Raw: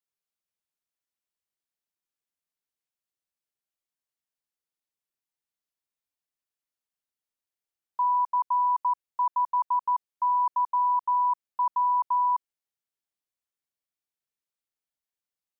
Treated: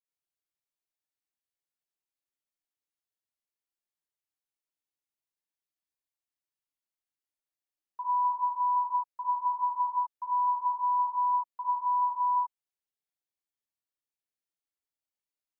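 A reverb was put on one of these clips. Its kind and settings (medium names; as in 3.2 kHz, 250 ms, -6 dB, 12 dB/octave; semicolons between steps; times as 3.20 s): gated-style reverb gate 110 ms rising, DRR -4 dB; trim -10.5 dB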